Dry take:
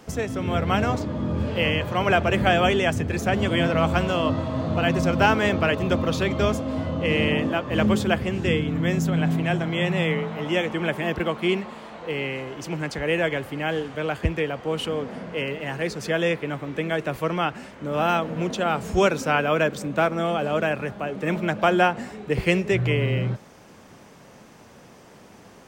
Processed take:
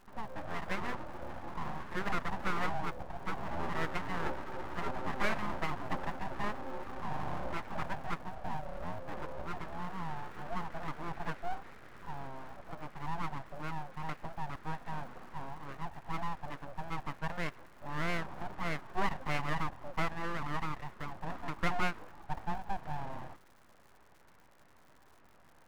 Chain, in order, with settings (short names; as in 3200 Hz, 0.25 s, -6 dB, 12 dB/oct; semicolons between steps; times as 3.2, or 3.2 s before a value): FFT band-pass 240–1500 Hz; crackle 200/s -43 dBFS; full-wave rectifier; gain -9 dB